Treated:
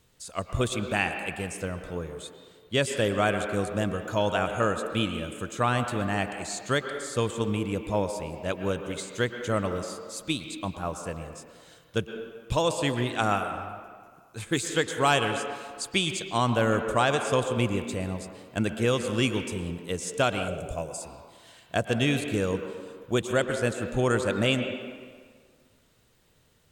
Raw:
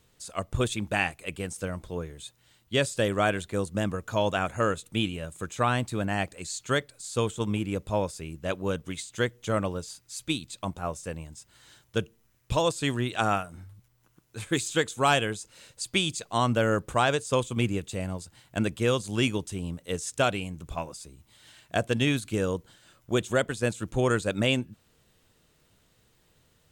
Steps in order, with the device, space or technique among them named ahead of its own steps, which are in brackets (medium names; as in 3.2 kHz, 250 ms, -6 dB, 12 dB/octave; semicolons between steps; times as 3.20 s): filtered reverb send (on a send: high-pass 250 Hz 12 dB/octave + low-pass 3.7 kHz 12 dB/octave + reverberation RT60 1.8 s, pre-delay 105 ms, DRR 6.5 dB); 20.48–21.02 s: on the sum: graphic EQ 125/250/500/1000/2000/4000/8000 Hz +6/-6/+8/-8/-5/-5/+9 dB